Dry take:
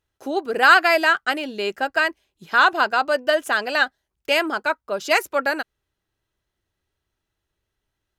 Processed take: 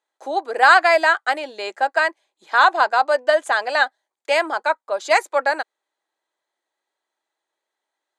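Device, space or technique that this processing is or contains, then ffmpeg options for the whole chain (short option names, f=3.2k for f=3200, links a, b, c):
phone speaker on a table: -af "highpass=f=390:w=0.5412,highpass=f=390:w=1.3066,equalizer=f=410:t=q:w=4:g=-8,equalizer=f=850:t=q:w=4:g=4,equalizer=f=1.4k:t=q:w=4:g=-5,equalizer=f=2.8k:t=q:w=4:g=-10,equalizer=f=5.4k:t=q:w=4:g=-10,lowpass=f=8.7k:w=0.5412,lowpass=f=8.7k:w=1.3066,volume=3.5dB"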